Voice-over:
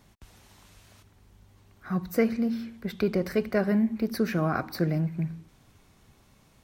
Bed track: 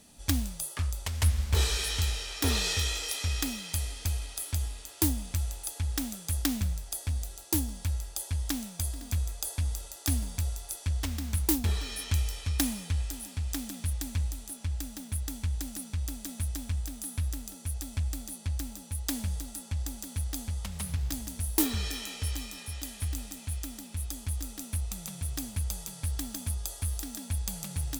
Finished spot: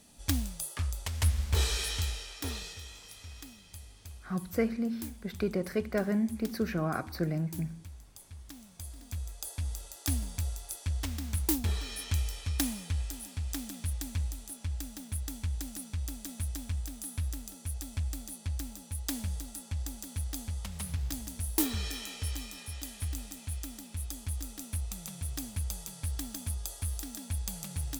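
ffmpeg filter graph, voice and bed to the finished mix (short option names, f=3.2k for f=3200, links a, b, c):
-filter_complex "[0:a]adelay=2400,volume=-5dB[a];[1:a]volume=12dB,afade=t=out:st=1.83:d=0.92:silence=0.188365,afade=t=in:st=8.53:d=1.49:silence=0.199526[b];[a][b]amix=inputs=2:normalize=0"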